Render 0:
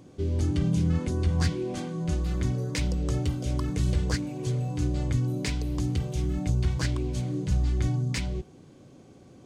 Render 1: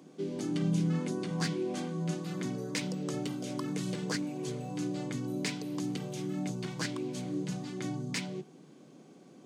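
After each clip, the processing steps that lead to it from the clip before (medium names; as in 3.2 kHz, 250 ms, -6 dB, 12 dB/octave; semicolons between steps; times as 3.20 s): steep high-pass 150 Hz 48 dB/octave; band-stop 540 Hz, Q 16; trim -2 dB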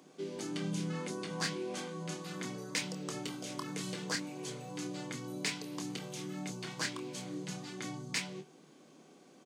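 bass shelf 360 Hz -11.5 dB; doubling 26 ms -8 dB; trim +1 dB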